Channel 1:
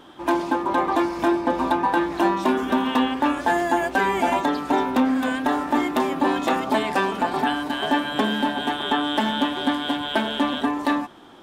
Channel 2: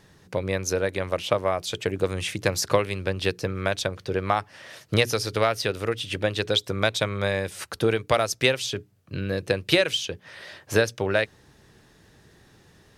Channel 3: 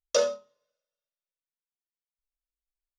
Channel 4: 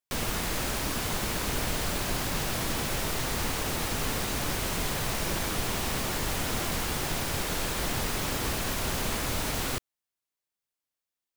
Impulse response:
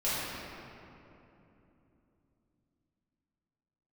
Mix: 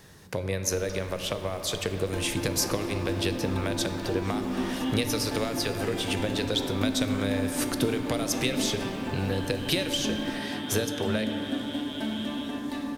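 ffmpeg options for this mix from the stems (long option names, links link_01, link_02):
-filter_complex "[0:a]equalizer=frequency=1000:width_type=o:width=2.3:gain=-13.5,adelay=1850,volume=-10.5dB,asplit=2[link_01][link_02];[link_02]volume=-5.5dB[link_03];[1:a]acompressor=threshold=-32dB:ratio=2,highshelf=frequency=8800:gain=10.5,volume=1.5dB,asplit=2[link_04][link_05];[link_05]volume=-16dB[link_06];[2:a]adelay=750,volume=-16.5dB[link_07];[3:a]lowpass=frequency=2600:poles=1,aecho=1:1:5.7:0.97,adelay=600,volume=-16dB[link_08];[4:a]atrim=start_sample=2205[link_09];[link_03][link_06]amix=inputs=2:normalize=0[link_10];[link_10][link_09]afir=irnorm=-1:irlink=0[link_11];[link_01][link_04][link_07][link_08][link_11]amix=inputs=5:normalize=0,acrossover=split=470|3000[link_12][link_13][link_14];[link_13]acompressor=threshold=-33dB:ratio=6[link_15];[link_12][link_15][link_14]amix=inputs=3:normalize=0"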